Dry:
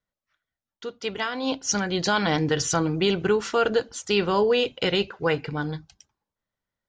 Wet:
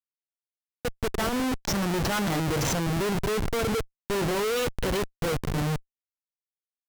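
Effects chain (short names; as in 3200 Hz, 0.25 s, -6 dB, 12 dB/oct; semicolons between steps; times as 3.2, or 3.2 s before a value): harmonic-percussive split percussive -7 dB; Schmitt trigger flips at -30.5 dBFS; vibrato 0.44 Hz 55 cents; gain +1 dB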